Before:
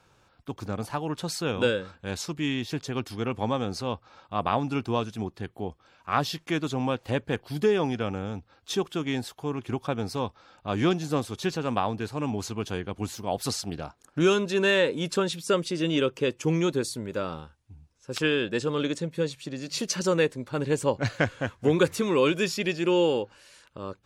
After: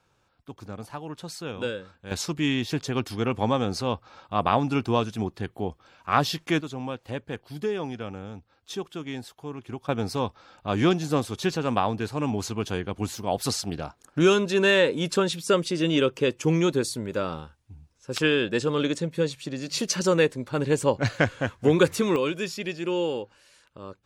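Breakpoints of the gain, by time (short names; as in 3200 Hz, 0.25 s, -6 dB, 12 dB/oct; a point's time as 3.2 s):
-6 dB
from 2.11 s +3.5 dB
from 6.61 s -5.5 dB
from 9.89 s +2.5 dB
from 22.16 s -4 dB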